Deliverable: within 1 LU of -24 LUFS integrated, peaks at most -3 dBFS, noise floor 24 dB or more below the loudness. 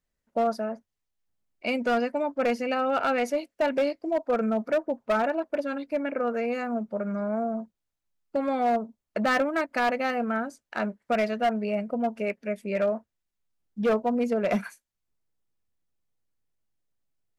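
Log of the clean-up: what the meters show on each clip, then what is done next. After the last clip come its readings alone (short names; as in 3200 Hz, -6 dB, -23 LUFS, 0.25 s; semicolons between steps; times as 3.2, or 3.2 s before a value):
clipped 1.2%; flat tops at -19.0 dBFS; loudness -28.0 LUFS; peak -19.0 dBFS; loudness target -24.0 LUFS
-> clip repair -19 dBFS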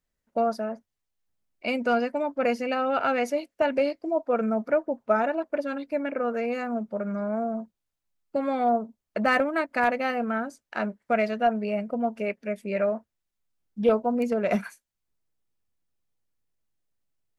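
clipped 0.0%; loudness -27.0 LUFS; peak -10.0 dBFS; loudness target -24.0 LUFS
-> gain +3 dB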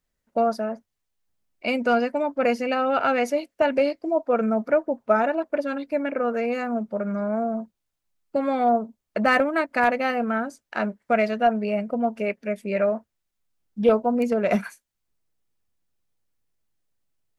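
loudness -24.0 LUFS; peak -7.0 dBFS; noise floor -80 dBFS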